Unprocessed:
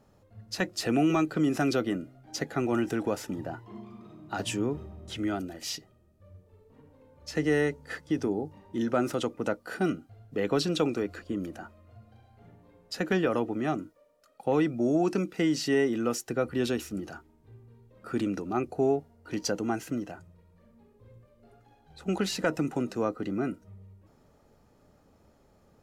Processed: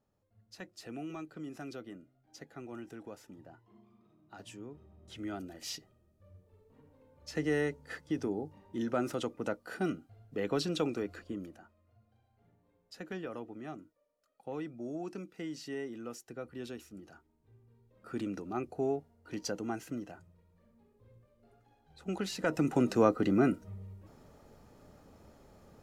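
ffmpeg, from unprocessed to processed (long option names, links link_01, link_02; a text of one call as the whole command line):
ffmpeg -i in.wav -af "volume=13dB,afade=type=in:start_time=4.78:duration=0.94:silence=0.251189,afade=type=out:start_time=11.22:duration=0.4:silence=0.354813,afade=type=in:start_time=17.01:duration=1.33:silence=0.421697,afade=type=in:start_time=22.38:duration=0.55:silence=0.281838" out.wav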